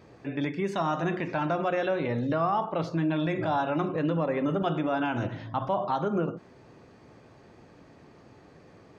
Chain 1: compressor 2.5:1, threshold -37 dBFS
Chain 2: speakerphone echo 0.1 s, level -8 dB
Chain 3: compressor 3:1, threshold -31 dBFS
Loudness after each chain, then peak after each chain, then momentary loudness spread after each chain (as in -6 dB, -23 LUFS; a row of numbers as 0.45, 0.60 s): -37.0, -28.5, -34.0 LUFS; -23.0, -15.5, -20.0 dBFS; 18, 5, 21 LU